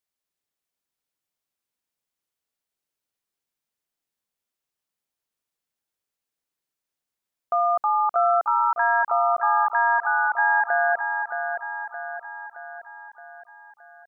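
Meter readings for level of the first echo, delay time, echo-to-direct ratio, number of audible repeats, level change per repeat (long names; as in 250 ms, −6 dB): −7.0 dB, 620 ms, −5.5 dB, 6, −5.5 dB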